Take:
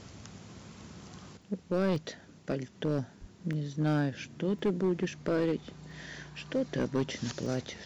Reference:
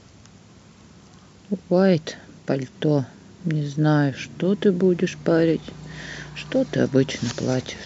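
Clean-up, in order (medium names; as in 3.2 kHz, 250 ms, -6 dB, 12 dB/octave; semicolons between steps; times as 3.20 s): clip repair -22.5 dBFS; de-plosive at 3.20 s; interpolate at 1.42/1.96/3.53/4.59/5.91/7.46 s, 1.2 ms; gain correction +9.5 dB, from 1.37 s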